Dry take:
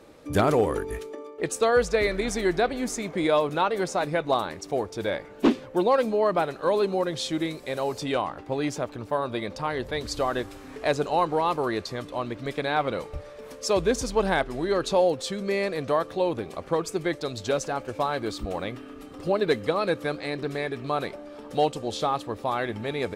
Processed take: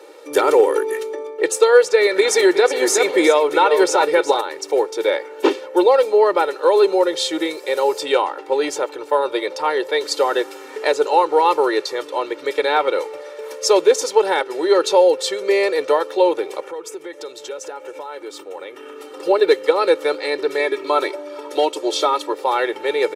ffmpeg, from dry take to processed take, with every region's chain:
-filter_complex "[0:a]asettb=1/sr,asplit=3[s0][s1][s2];[s0]atrim=end=2.164[s3];[s1]atrim=start=2.16:end=4.41,asetpts=PTS-STARTPTS,afade=t=in:d=0.004:c=qsin,afade=t=out:st=2.246:d=0.004:c=qsin,acontrast=23,aecho=1:1:368:0.335,atrim=end_sample=99225[s4];[s2]atrim=start=4.406[s5];[s3][s4]acrossfade=d=0.004:c1=hsin:c2=qsin[s6];[s6][s5]acrossfade=d=0.004:c1=qsin:c2=hsin,asettb=1/sr,asplit=3[s7][s8][s9];[s7]atrim=end=16.604[s10];[s8]atrim=start=16.6:end=18.97,asetpts=PTS-STARTPTS,afade=t=in:d=0.004:c=qsin,afade=t=out:st=2.366:d=0.004:c=qsin,equalizer=f=4400:t=o:w=0.31:g=-7,acompressor=threshold=0.0126:ratio=5:attack=3.2:release=140:knee=1:detection=peak[s11];[s9]atrim=start=18.966[s12];[s10][s11]acrossfade=d=0.004:c1=hsin:c2=qsin[s13];[s13][s12]acrossfade=d=0.004:c1=qsin:c2=hsin,asettb=1/sr,asplit=3[s14][s15][s16];[s14]atrim=end=20.594[s17];[s15]atrim=start=20.59:end=22.33,asetpts=PTS-STARTPTS,afade=t=in:d=0.004:c=qsin,afade=t=out:st=1.736:d=0.004:c=qsin,aecho=1:1:3.1:0.65,atrim=end_sample=76734,asoftclip=type=hard:threshold=0.282[s18];[s16]atrim=start=22.326[s19];[s17][s18]acrossfade=d=0.004:c1=hsin:c2=qsin[s20];[s20][s19]acrossfade=d=0.004:c1=qsin:c2=hsin,highpass=f=330:w=0.5412,highpass=f=330:w=1.3066,alimiter=limit=0.2:level=0:latency=1:release=233,aecho=1:1:2.2:0.89,volume=2.24"

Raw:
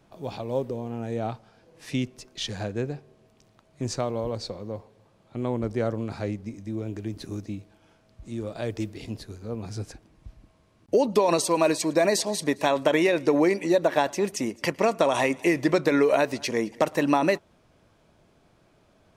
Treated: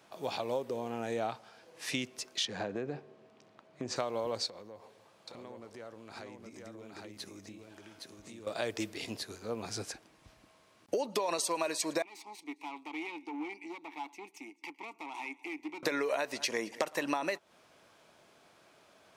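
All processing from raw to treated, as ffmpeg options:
-filter_complex "[0:a]asettb=1/sr,asplit=3[s0][s1][s2];[s0]atrim=end=2.454[s3];[s1]atrim=start=2.45:end=3.96,asetpts=PTS-STARTPTS,afade=t=in:d=0.004:c=qsin,afade=t=out:st=1.506:d=0.004:c=qsin,highpass=200,aemphasis=mode=reproduction:type=riaa,acompressor=threshold=0.0447:ratio=5:attack=3.2:release=140:knee=1:detection=peak[s4];[s2]atrim=start=3.956[s5];[s3][s4]acrossfade=d=0.004:c1=hsin:c2=qsin[s6];[s6][s5]acrossfade=d=0.004:c1=qsin:c2=hsin,asettb=1/sr,asplit=3[s7][s8][s9];[s7]atrim=end=4.464[s10];[s8]atrim=start=4.46:end=8.47,asetpts=PTS-STARTPTS,afade=t=in:d=0.004:c=qsin,afade=t=out:st=4.006:d=0.004:c=qsin,acompressor=threshold=0.00794:ratio=6:attack=3.2:release=140:knee=1:detection=peak,aecho=1:1:815:0.668,atrim=end_sample=176841[s11];[s9]atrim=start=8.466[s12];[s10][s11]acrossfade=d=0.004:c1=hsin:c2=qsin[s13];[s13][s12]acrossfade=d=0.004:c1=qsin:c2=hsin,asettb=1/sr,asplit=3[s14][s15][s16];[s14]atrim=end=12.024[s17];[s15]atrim=start=12.02:end=15.83,asetpts=PTS-STARTPTS,afade=t=in:d=0.004:c=qsin,afade=t=out:st=3.806:d=0.004:c=qsin,aeval=exprs='(tanh(14.1*val(0)+0.8)-tanh(0.8))/14.1':c=same,asplit=3[s18][s19][s20];[s18]bandpass=f=300:t=q:w=8,volume=1[s21];[s19]bandpass=f=870:t=q:w=8,volume=0.501[s22];[s20]bandpass=f=2240:t=q:w=8,volume=0.355[s23];[s21][s22][s23]amix=inputs=3:normalize=0,aemphasis=mode=production:type=bsi[s24];[s16]atrim=start=15.826[s25];[s17][s24]acrossfade=d=0.004:c1=hsin:c2=qsin[s26];[s26][s25]acrossfade=d=0.004:c1=qsin:c2=hsin,highpass=f=870:p=1,acompressor=threshold=0.0178:ratio=6,volume=1.78"

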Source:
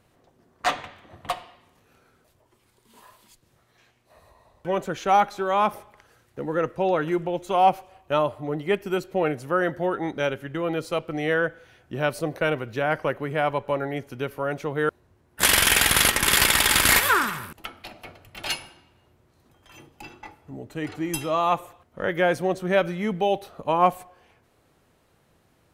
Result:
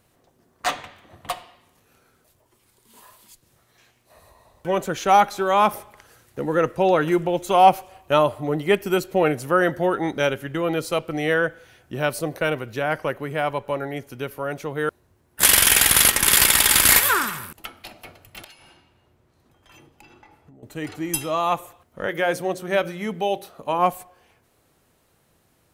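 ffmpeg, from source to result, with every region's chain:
-filter_complex "[0:a]asettb=1/sr,asplit=3[s0][s1][s2];[s0]atrim=end=18.444[s3];[s1]atrim=start=18.44:end=20.63,asetpts=PTS-STARTPTS,afade=t=in:d=0.004:c=qsin,afade=t=out:st=2.186:d=0.004:c=qsin,highshelf=f=6100:g=-11,acompressor=threshold=0.00562:ratio=12:attack=3.2:release=140:knee=1:detection=peak[s4];[s2]atrim=start=20.626[s5];[s3][s4]acrossfade=d=0.004:c1=hsin:c2=qsin[s6];[s6][s5]acrossfade=d=0.004:c1=qsin:c2=hsin,asettb=1/sr,asplit=3[s7][s8][s9];[s7]atrim=end=22.074[s10];[s8]atrim=start=22.07:end=23.79,asetpts=PTS-STARTPTS,afade=t=in:d=0.004:c=qsin,afade=t=out:st=1.716:d=0.004:c=qsin,lowshelf=f=83:g=-11,bandreject=f=60:t=h:w=6,bandreject=f=120:t=h:w=6,bandreject=f=180:t=h:w=6,bandreject=f=240:t=h:w=6,bandreject=f=300:t=h:w=6,bandreject=f=360:t=h:w=6,bandreject=f=420:t=h:w=6,bandreject=f=480:t=h:w=6,bandreject=f=540:t=h:w=6[s11];[s9]atrim=start=23.786[s12];[s10][s11]acrossfade=d=0.004:c1=hsin:c2=qsin[s13];[s13][s12]acrossfade=d=0.004:c1=qsin:c2=hsin,highshelf=f=6200:g=9.5,dynaudnorm=f=420:g=21:m=3.76,volume=0.891"

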